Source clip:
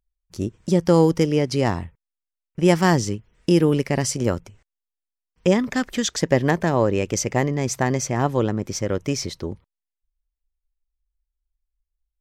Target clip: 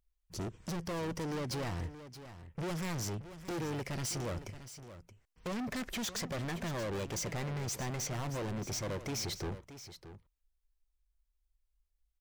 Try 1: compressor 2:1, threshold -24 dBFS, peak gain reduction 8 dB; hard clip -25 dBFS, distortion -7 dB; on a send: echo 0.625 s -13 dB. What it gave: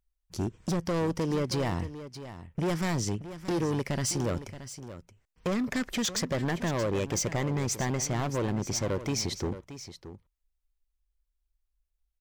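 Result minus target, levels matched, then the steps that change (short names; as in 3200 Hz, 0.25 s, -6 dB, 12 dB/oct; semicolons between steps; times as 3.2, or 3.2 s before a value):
hard clip: distortion -5 dB
change: hard clip -35.5 dBFS, distortion -2 dB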